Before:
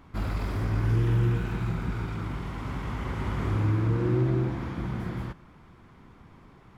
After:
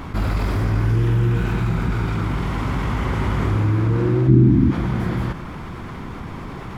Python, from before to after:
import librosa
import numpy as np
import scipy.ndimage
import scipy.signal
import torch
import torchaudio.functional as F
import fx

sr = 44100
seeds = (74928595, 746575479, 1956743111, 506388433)

y = fx.low_shelf_res(x, sr, hz=390.0, db=12.5, q=3.0, at=(4.27, 4.7), fade=0.02)
y = fx.env_flatten(y, sr, amount_pct=50)
y = y * 10.0 ** (-1.0 / 20.0)